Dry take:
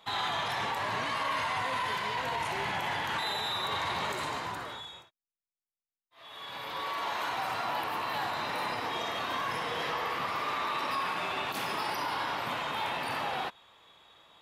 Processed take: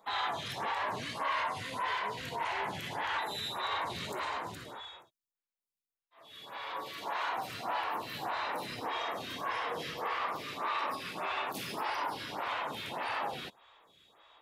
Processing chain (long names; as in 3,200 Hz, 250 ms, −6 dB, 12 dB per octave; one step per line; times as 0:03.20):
phaser with staggered stages 1.7 Hz